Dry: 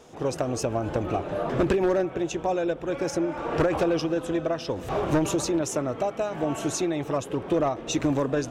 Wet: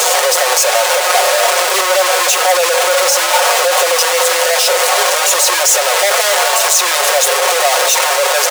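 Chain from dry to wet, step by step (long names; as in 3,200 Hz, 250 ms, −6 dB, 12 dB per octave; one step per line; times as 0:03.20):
sign of each sample alone
Butterworth high-pass 460 Hz 72 dB per octave
parametric band 7,800 Hz +5.5 dB 1.5 octaves
comb filter 5.5 ms, depth 99%
boost into a limiter +22.5 dB
level −1 dB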